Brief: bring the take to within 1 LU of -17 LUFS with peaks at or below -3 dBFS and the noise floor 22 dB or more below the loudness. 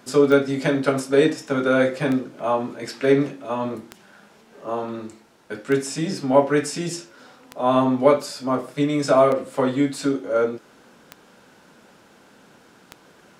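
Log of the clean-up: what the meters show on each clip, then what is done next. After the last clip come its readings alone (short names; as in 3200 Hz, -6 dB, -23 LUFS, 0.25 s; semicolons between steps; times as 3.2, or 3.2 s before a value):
clicks 8; loudness -21.5 LUFS; peak -2.5 dBFS; loudness target -17.0 LUFS
-> de-click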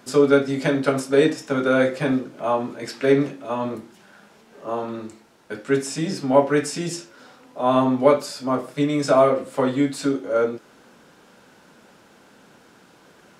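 clicks 0; loudness -21.5 LUFS; peak -2.5 dBFS; loudness target -17.0 LUFS
-> gain +4.5 dB; limiter -3 dBFS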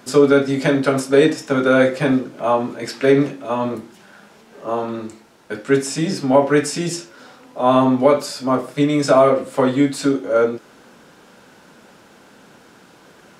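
loudness -17.5 LUFS; peak -3.0 dBFS; noise floor -48 dBFS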